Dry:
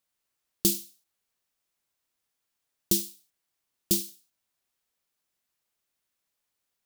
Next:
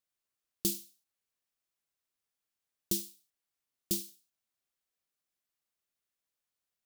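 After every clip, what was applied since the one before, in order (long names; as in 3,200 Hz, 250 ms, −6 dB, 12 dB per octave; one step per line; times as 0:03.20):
notch filter 920 Hz, Q 21
level −7.5 dB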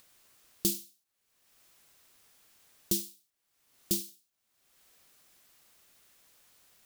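upward compression, threshold −47 dBFS
level +2.5 dB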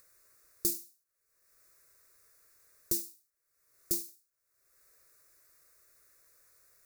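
phaser with its sweep stopped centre 840 Hz, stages 6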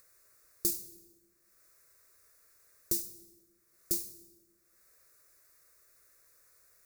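dense smooth reverb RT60 1.5 s, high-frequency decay 0.7×, DRR 11.5 dB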